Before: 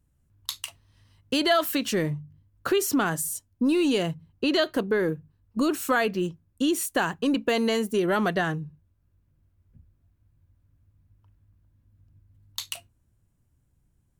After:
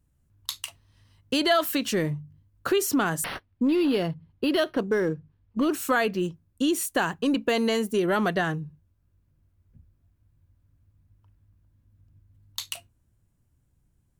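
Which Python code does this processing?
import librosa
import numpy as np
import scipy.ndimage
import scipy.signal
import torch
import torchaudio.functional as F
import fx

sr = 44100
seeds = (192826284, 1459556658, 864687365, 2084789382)

y = fx.resample_linear(x, sr, factor=6, at=(3.24, 5.72))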